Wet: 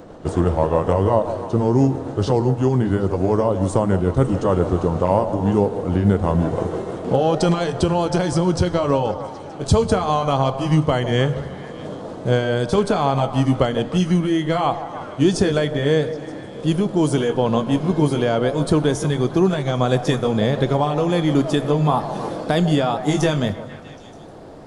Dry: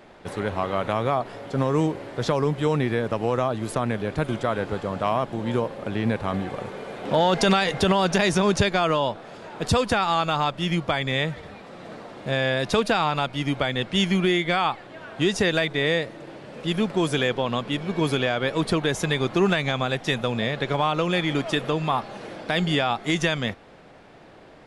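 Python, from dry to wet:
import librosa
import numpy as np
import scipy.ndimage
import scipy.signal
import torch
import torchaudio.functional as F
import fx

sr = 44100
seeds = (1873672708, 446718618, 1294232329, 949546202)

y = fx.pitch_glide(x, sr, semitones=-3.0, runs='ending unshifted')
y = fx.peak_eq(y, sr, hz=2300.0, db=-14.0, octaves=1.7)
y = fx.rider(y, sr, range_db=4, speed_s=0.5)
y = fx.echo_stepped(y, sr, ms=154, hz=620.0, octaves=0.7, feedback_pct=70, wet_db=-9)
y = fx.rev_fdn(y, sr, rt60_s=1.2, lf_ratio=1.5, hf_ratio=0.8, size_ms=64.0, drr_db=14.0)
y = y * librosa.db_to_amplitude(8.0)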